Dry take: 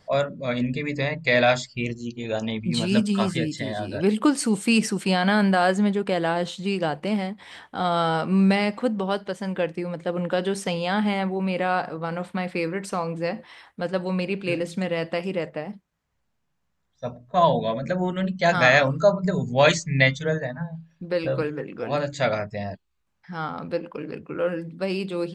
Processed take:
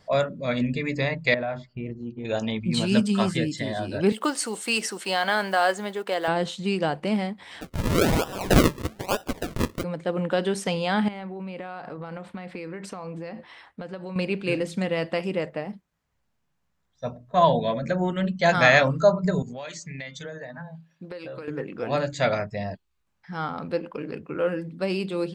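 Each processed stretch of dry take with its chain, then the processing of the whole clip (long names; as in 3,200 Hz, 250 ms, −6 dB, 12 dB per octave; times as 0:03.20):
0:01.34–0:02.25: low-pass filter 1,300 Hz + downward compressor 2.5 to 1, threshold −30 dBFS
0:04.12–0:06.28: one scale factor per block 7 bits + high-pass filter 480 Hz + notch filter 2,400 Hz, Q 15
0:07.61–0:09.84: high-pass filter 890 Hz + flat-topped bell 2,000 Hz +13.5 dB 1.2 octaves + sample-and-hold swept by an LFO 40× 1.1 Hz
0:11.08–0:14.16: high-shelf EQ 6,500 Hz −9.5 dB + downward compressor 10 to 1, threshold −31 dBFS
0:19.42–0:21.48: high-pass filter 280 Hz 6 dB per octave + downward compressor 10 to 1, threshold −33 dBFS
whole clip: no processing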